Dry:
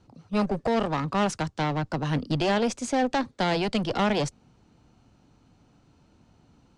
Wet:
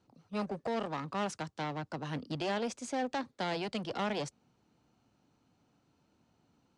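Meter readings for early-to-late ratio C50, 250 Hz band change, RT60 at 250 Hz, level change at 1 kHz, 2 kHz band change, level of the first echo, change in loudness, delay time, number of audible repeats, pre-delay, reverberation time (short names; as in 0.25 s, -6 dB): none, -11.0 dB, none, -9.0 dB, -9.0 dB, none, -10.0 dB, none, none, none, none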